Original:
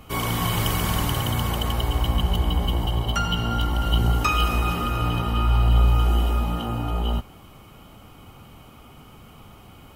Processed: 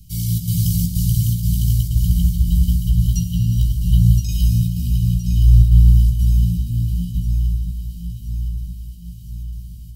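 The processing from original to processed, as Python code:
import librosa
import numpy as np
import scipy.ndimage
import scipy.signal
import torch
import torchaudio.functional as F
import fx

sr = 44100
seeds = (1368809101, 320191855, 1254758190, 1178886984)

y = fx.chopper(x, sr, hz=2.1, depth_pct=60, duty_pct=80)
y = scipy.signal.sosfilt(scipy.signal.ellip(3, 1.0, 70, [160.0, 4600.0], 'bandstop', fs=sr, output='sos'), y)
y = fx.dynamic_eq(y, sr, hz=150.0, q=1.6, threshold_db=-38.0, ratio=4.0, max_db=5)
y = fx.doubler(y, sr, ms=17.0, db=-5.5)
y = fx.echo_alternate(y, sr, ms=509, hz=1500.0, feedback_pct=73, wet_db=-5)
y = F.gain(torch.from_numpy(y), 3.5).numpy()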